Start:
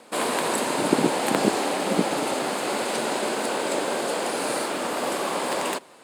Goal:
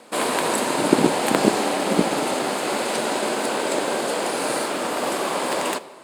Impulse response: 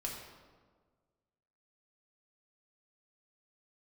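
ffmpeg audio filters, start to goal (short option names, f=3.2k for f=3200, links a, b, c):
-filter_complex "[0:a]aeval=exprs='0.596*(cos(1*acos(clip(val(0)/0.596,-1,1)))-cos(1*PI/2))+0.0168*(cos(7*acos(clip(val(0)/0.596,-1,1)))-cos(7*PI/2))':c=same,asplit=2[a][b];[1:a]atrim=start_sample=2205[c];[b][c]afir=irnorm=-1:irlink=0,volume=-11.5dB[d];[a][d]amix=inputs=2:normalize=0,volume=2.5dB"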